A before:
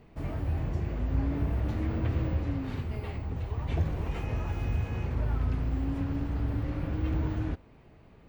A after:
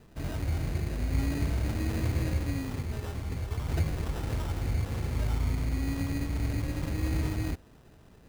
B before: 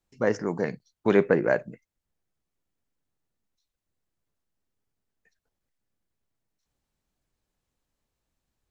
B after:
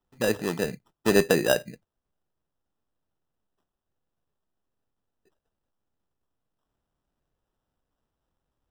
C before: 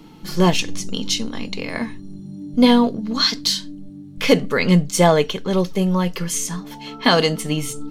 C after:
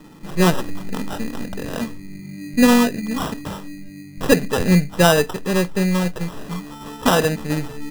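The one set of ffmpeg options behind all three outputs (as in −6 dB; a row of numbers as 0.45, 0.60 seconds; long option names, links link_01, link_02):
-filter_complex "[0:a]acrossover=split=3000[link_01][link_02];[link_02]acompressor=threshold=-39dB:ratio=4:attack=1:release=60[link_03];[link_01][link_03]amix=inputs=2:normalize=0,acrusher=samples=20:mix=1:aa=0.000001"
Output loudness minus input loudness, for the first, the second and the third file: 0.0, +0.5, −0.5 LU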